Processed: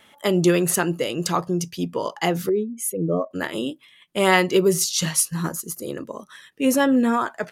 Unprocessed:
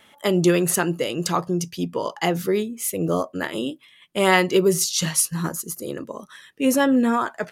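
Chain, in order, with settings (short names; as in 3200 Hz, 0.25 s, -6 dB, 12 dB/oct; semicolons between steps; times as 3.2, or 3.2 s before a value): 2.49–3.31 spectral contrast raised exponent 1.8; ending taper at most 470 dB/s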